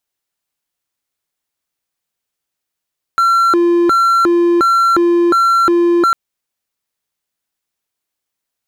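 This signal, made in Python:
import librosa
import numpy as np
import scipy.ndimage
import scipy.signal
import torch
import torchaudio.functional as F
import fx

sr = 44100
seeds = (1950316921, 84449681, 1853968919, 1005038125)

y = fx.siren(sr, length_s=2.95, kind='hi-lo', low_hz=345.0, high_hz=1360.0, per_s=1.4, wave='triangle', level_db=-6.5)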